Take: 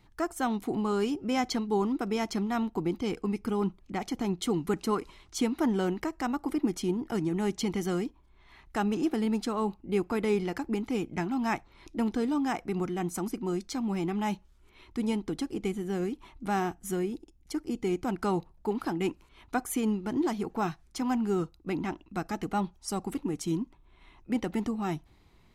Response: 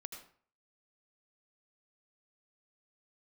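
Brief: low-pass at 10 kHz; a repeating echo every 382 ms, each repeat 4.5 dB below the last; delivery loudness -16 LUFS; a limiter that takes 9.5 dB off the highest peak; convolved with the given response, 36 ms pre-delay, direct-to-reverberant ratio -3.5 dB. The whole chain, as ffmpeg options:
-filter_complex "[0:a]lowpass=10000,alimiter=limit=0.0631:level=0:latency=1,aecho=1:1:382|764|1146|1528|1910|2292|2674|3056|3438:0.596|0.357|0.214|0.129|0.0772|0.0463|0.0278|0.0167|0.01,asplit=2[s0][s1];[1:a]atrim=start_sample=2205,adelay=36[s2];[s1][s2]afir=irnorm=-1:irlink=0,volume=2.24[s3];[s0][s3]amix=inputs=2:normalize=0,volume=3.76"

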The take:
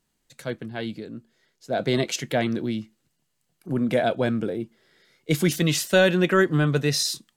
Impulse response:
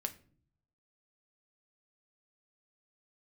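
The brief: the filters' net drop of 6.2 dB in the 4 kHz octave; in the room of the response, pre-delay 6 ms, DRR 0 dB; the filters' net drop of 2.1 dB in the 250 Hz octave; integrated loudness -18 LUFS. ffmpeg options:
-filter_complex "[0:a]equalizer=f=250:t=o:g=-3,equalizer=f=4000:t=o:g=-8,asplit=2[s0][s1];[1:a]atrim=start_sample=2205,adelay=6[s2];[s1][s2]afir=irnorm=-1:irlink=0,volume=1.06[s3];[s0][s3]amix=inputs=2:normalize=0,volume=1.58"

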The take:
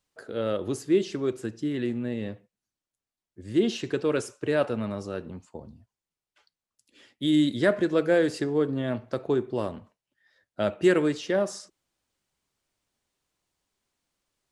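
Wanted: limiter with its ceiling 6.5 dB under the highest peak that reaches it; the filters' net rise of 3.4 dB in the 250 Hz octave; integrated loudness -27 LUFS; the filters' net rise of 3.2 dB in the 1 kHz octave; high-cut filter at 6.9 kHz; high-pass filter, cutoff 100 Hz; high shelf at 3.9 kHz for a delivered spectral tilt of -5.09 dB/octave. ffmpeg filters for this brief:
-af "highpass=100,lowpass=6900,equalizer=f=250:t=o:g=4.5,equalizer=f=1000:t=o:g=5,highshelf=f=3900:g=-8.5,volume=0.891,alimiter=limit=0.178:level=0:latency=1"

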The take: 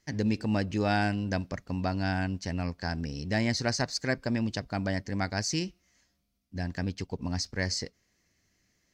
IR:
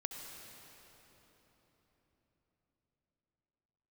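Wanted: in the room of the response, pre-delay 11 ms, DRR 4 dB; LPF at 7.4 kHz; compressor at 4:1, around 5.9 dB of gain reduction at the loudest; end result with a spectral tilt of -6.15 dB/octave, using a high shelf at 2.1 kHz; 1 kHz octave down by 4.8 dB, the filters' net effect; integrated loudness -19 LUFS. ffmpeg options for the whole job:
-filter_complex "[0:a]lowpass=7400,equalizer=f=1000:t=o:g=-6.5,highshelf=f=2100:g=-6,acompressor=threshold=0.0316:ratio=4,asplit=2[s0][s1];[1:a]atrim=start_sample=2205,adelay=11[s2];[s1][s2]afir=irnorm=-1:irlink=0,volume=0.668[s3];[s0][s3]amix=inputs=2:normalize=0,volume=5.96"

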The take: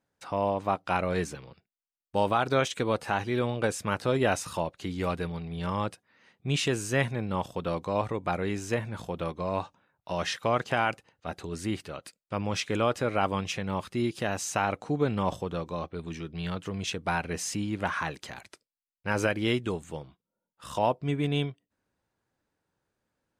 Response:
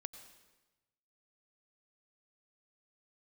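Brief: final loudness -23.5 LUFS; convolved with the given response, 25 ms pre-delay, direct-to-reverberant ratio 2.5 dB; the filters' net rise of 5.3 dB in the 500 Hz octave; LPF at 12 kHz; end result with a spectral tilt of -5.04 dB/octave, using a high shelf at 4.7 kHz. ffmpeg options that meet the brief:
-filter_complex "[0:a]lowpass=12000,equalizer=f=500:t=o:g=6.5,highshelf=f=4700:g=-6.5,asplit=2[s0][s1];[1:a]atrim=start_sample=2205,adelay=25[s2];[s1][s2]afir=irnorm=-1:irlink=0,volume=1.12[s3];[s0][s3]amix=inputs=2:normalize=0,volume=1.26"

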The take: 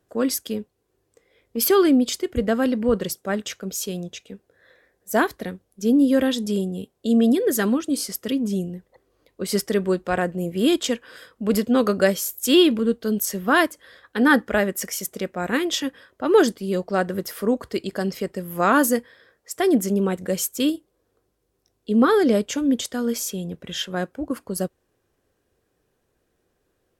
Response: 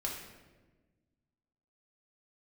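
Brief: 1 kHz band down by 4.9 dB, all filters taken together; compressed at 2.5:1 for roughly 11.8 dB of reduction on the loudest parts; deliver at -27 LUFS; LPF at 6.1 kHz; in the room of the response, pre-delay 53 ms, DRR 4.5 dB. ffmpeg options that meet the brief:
-filter_complex "[0:a]lowpass=6100,equalizer=f=1000:t=o:g=-7,acompressor=threshold=0.0316:ratio=2.5,asplit=2[s0][s1];[1:a]atrim=start_sample=2205,adelay=53[s2];[s1][s2]afir=irnorm=-1:irlink=0,volume=0.447[s3];[s0][s3]amix=inputs=2:normalize=0,volume=1.41"

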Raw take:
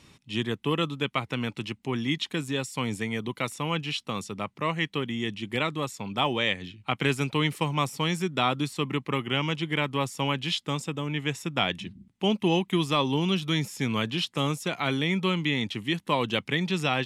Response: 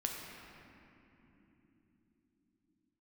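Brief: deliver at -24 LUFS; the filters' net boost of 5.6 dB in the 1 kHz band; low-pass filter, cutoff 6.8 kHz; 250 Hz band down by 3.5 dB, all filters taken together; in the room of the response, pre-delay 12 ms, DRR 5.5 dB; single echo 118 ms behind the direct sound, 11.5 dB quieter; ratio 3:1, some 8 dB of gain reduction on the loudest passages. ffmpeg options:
-filter_complex "[0:a]lowpass=6800,equalizer=f=250:t=o:g=-5.5,equalizer=f=1000:t=o:g=7,acompressor=threshold=0.0447:ratio=3,aecho=1:1:118:0.266,asplit=2[s0][s1];[1:a]atrim=start_sample=2205,adelay=12[s2];[s1][s2]afir=irnorm=-1:irlink=0,volume=0.422[s3];[s0][s3]amix=inputs=2:normalize=0,volume=2.11"

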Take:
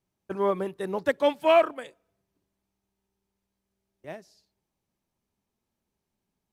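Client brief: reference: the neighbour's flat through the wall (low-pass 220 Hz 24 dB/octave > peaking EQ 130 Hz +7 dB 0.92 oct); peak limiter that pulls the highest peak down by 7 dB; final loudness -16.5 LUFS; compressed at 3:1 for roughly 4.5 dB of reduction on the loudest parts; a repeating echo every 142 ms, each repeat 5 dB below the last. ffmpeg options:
-af "acompressor=threshold=0.0891:ratio=3,alimiter=limit=0.1:level=0:latency=1,lowpass=f=220:w=0.5412,lowpass=f=220:w=1.3066,equalizer=f=130:t=o:w=0.92:g=7,aecho=1:1:142|284|426|568|710|852|994:0.562|0.315|0.176|0.0988|0.0553|0.031|0.0173,volume=16.8"

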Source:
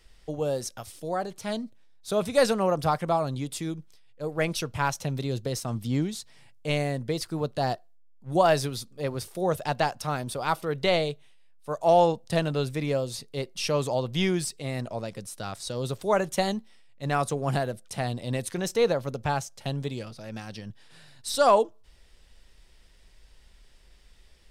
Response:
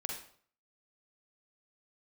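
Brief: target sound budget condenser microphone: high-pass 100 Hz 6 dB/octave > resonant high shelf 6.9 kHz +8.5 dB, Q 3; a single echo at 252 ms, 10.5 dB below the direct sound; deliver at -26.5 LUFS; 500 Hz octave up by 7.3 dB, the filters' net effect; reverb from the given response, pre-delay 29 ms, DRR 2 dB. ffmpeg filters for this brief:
-filter_complex "[0:a]equalizer=f=500:t=o:g=9,aecho=1:1:252:0.299,asplit=2[s0][s1];[1:a]atrim=start_sample=2205,adelay=29[s2];[s1][s2]afir=irnorm=-1:irlink=0,volume=0.75[s3];[s0][s3]amix=inputs=2:normalize=0,highpass=f=100:p=1,highshelf=f=6900:t=q:w=3:g=8.5,volume=0.473"

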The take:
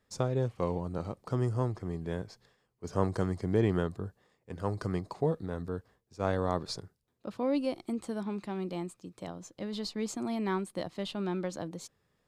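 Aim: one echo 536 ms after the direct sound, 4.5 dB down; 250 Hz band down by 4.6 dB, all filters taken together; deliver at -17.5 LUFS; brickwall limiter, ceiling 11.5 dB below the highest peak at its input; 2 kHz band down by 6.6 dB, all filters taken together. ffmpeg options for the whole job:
-af "equalizer=f=250:t=o:g=-6.5,equalizer=f=2000:t=o:g=-9,alimiter=level_in=1.19:limit=0.0631:level=0:latency=1,volume=0.841,aecho=1:1:536:0.596,volume=10.6"

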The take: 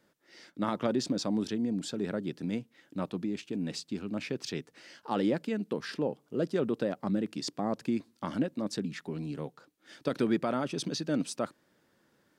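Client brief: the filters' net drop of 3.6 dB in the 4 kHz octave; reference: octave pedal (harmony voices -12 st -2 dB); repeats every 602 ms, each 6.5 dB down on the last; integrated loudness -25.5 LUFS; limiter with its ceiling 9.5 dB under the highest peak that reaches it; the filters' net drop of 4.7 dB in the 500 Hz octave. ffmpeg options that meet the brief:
-filter_complex "[0:a]equalizer=f=500:t=o:g=-6,equalizer=f=4000:t=o:g=-4.5,alimiter=level_in=1.41:limit=0.0631:level=0:latency=1,volume=0.708,aecho=1:1:602|1204|1806|2408|3010|3612:0.473|0.222|0.105|0.0491|0.0231|0.0109,asplit=2[s0][s1];[s1]asetrate=22050,aresample=44100,atempo=2,volume=0.794[s2];[s0][s2]amix=inputs=2:normalize=0,volume=3.35"

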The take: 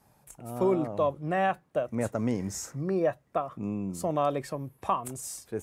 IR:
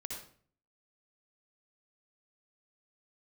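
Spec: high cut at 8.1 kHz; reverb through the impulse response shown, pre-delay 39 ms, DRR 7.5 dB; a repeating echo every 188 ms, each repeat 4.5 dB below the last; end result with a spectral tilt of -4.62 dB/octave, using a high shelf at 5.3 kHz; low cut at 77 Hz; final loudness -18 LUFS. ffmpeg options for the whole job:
-filter_complex "[0:a]highpass=77,lowpass=8100,highshelf=f=5300:g=7,aecho=1:1:188|376|564|752|940|1128|1316|1504|1692:0.596|0.357|0.214|0.129|0.0772|0.0463|0.0278|0.0167|0.01,asplit=2[s0][s1];[1:a]atrim=start_sample=2205,adelay=39[s2];[s1][s2]afir=irnorm=-1:irlink=0,volume=0.473[s3];[s0][s3]amix=inputs=2:normalize=0,volume=2.99"

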